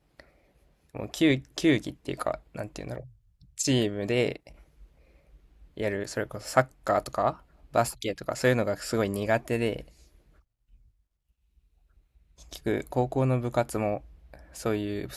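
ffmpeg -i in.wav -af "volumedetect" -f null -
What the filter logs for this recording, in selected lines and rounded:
mean_volume: -30.2 dB
max_volume: -4.6 dB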